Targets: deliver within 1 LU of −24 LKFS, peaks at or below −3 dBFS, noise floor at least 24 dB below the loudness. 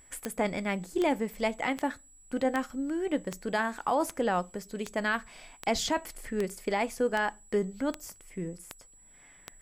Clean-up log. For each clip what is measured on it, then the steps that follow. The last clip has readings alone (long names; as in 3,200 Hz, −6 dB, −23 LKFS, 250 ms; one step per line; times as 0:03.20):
number of clicks 13; interfering tone 7,800 Hz; level of the tone −56 dBFS; integrated loudness −31.5 LKFS; sample peak −13.0 dBFS; target loudness −24.0 LKFS
→ click removal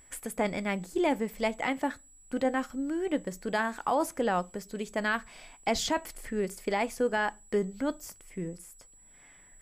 number of clicks 0; interfering tone 7,800 Hz; level of the tone −56 dBFS
→ notch filter 7,800 Hz, Q 30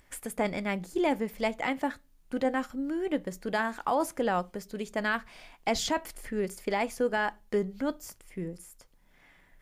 interfering tone none found; integrated loudness −31.5 LKFS; sample peak −17.5 dBFS; target loudness −24.0 LKFS
→ level +7.5 dB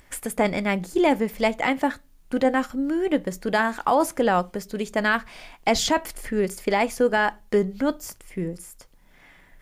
integrated loudness −24.0 LKFS; sample peak −10.0 dBFS; background noise floor −55 dBFS